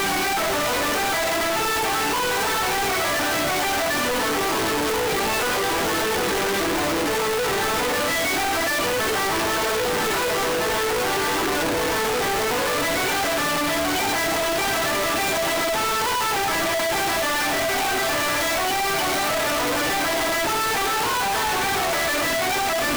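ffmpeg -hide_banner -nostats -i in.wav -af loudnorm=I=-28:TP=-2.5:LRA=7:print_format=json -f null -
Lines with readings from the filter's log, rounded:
"input_i" : "-21.3",
"input_tp" : "-16.9",
"input_lra" : "0.4",
"input_thresh" : "-31.3",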